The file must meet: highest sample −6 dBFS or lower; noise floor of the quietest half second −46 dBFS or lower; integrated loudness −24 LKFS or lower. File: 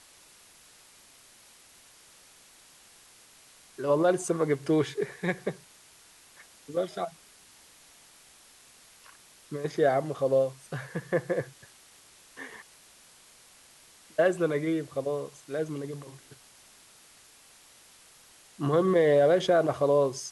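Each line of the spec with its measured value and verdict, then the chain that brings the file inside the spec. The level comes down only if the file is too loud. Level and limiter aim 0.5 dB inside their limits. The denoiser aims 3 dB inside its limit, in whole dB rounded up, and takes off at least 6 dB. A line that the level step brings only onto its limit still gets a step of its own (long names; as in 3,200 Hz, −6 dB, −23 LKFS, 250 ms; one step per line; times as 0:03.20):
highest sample −13.0 dBFS: in spec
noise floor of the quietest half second −56 dBFS: in spec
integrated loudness −27.5 LKFS: in spec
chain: no processing needed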